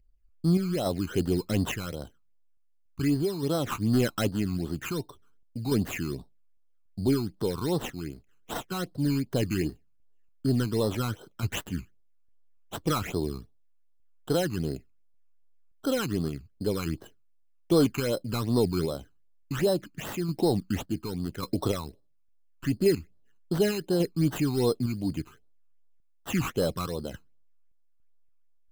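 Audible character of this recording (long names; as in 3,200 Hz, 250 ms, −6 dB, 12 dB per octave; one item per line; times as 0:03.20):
aliases and images of a low sample rate 4,600 Hz, jitter 0%
phaser sweep stages 12, 2.6 Hz, lowest notch 560–2,400 Hz
sample-and-hold tremolo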